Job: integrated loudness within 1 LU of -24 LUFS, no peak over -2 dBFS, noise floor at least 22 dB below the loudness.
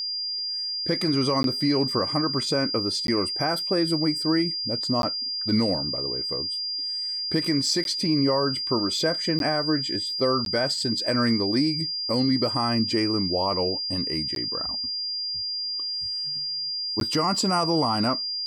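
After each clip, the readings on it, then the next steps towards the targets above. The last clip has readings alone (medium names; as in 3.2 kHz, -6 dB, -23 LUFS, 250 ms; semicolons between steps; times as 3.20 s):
dropouts 8; longest dropout 12 ms; steady tone 4.8 kHz; tone level -27 dBFS; loudness -24.0 LUFS; peak level -13.0 dBFS; loudness target -24.0 LUFS
-> interpolate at 1.43/3.07/5.02/7.84/9.39/10.45/14.35/17.00 s, 12 ms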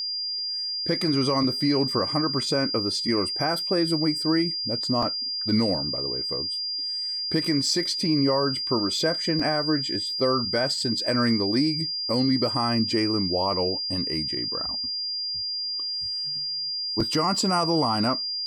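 dropouts 0; steady tone 4.8 kHz; tone level -27 dBFS
-> band-stop 4.8 kHz, Q 30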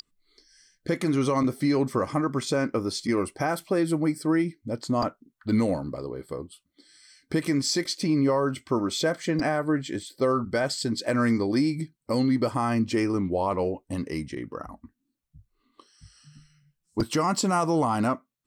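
steady tone not found; loudness -26.5 LUFS; peak level -12.5 dBFS; loudness target -24.0 LUFS
-> trim +2.5 dB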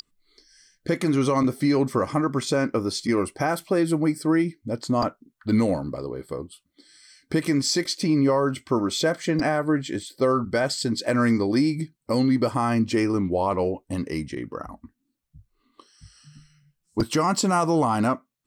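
loudness -24.0 LUFS; peak level -10.0 dBFS; noise floor -76 dBFS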